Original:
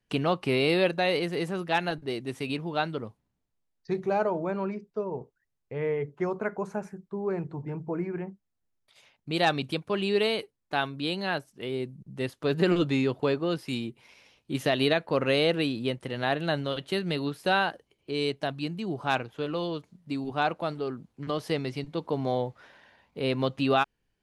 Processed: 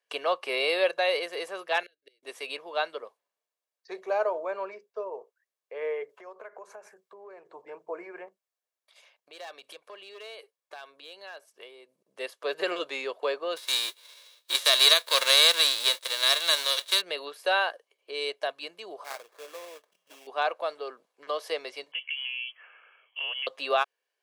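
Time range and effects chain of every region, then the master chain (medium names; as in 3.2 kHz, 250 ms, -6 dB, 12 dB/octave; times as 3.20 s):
1.83–2.23 s: bass shelf 210 Hz -7 dB + inverted gate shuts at -28 dBFS, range -32 dB + Butterworth band-stop 930 Hz, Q 0.66
6.09–7.46 s: compression 12:1, threshold -37 dBFS + tape noise reduction on one side only encoder only
8.28–12.09 s: hard clipper -20.5 dBFS + compression 8:1, threshold -39 dBFS
13.56–17.00 s: formants flattened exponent 0.3 + peaking EQ 3.8 kHz +13.5 dB 0.33 oct + band-stop 770 Hz, Q 5.5
19.04–20.27 s: compression 1.5:1, threshold -54 dBFS + sample-rate reducer 3 kHz, jitter 20%
21.92–23.47 s: compression 5:1, threshold -30 dBFS + frequency inversion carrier 3.2 kHz
whole clip: high-pass 480 Hz 24 dB/octave; comb 1.8 ms, depth 34%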